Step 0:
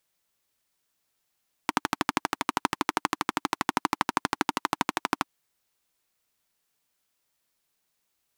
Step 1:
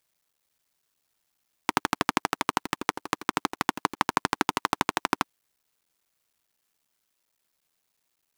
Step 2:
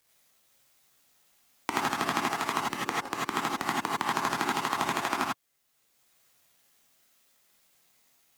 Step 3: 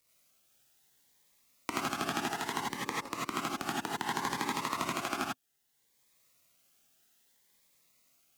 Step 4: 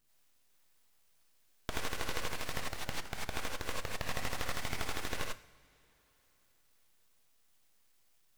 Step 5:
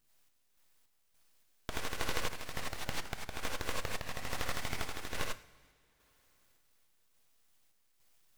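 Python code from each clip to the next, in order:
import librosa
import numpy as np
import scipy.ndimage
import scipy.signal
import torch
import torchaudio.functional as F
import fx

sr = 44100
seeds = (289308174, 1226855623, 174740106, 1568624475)

y1 = fx.cycle_switch(x, sr, every=3, mode='muted')
y1 = y1 * librosa.db_to_amplitude(2.0)
y2 = fx.rev_gated(y1, sr, seeds[0], gate_ms=120, shape='rising', drr_db=-5.0)
y2 = fx.band_squash(y2, sr, depth_pct=40)
y2 = y2 * librosa.db_to_amplitude(-7.5)
y3 = fx.notch_cascade(y2, sr, direction='rising', hz=0.63)
y3 = y3 * librosa.db_to_amplitude(-2.5)
y4 = np.abs(y3)
y4 = fx.rev_double_slope(y4, sr, seeds[1], early_s=0.58, late_s=3.9, knee_db=-18, drr_db=12.0)
y4 = y4 * librosa.db_to_amplitude(-1.5)
y5 = fx.tremolo_random(y4, sr, seeds[2], hz=3.5, depth_pct=55)
y5 = y5 * librosa.db_to_amplitude(2.0)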